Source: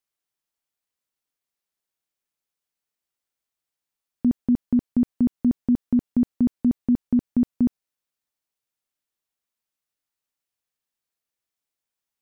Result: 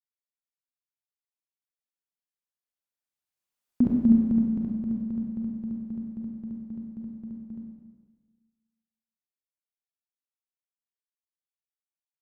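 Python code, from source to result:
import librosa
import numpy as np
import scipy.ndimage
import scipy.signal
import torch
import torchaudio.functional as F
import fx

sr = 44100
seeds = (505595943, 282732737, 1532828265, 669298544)

y = fx.doppler_pass(x, sr, speed_mps=38, closest_m=11.0, pass_at_s=3.83)
y = fx.rev_schroeder(y, sr, rt60_s=1.4, comb_ms=31, drr_db=-1.0)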